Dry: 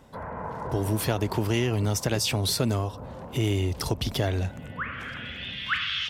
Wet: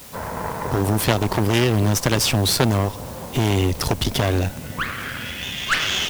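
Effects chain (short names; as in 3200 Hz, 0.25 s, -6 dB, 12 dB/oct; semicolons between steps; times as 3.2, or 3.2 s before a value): added harmonics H 2 -6 dB, 8 -15 dB, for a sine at -11 dBFS; requantised 8-bit, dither triangular; gain +6 dB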